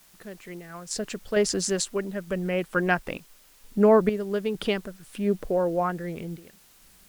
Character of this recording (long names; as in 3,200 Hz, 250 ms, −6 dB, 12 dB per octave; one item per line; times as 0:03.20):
sample-and-hold tremolo 2.2 Hz, depth 85%
a quantiser's noise floor 10 bits, dither triangular
SBC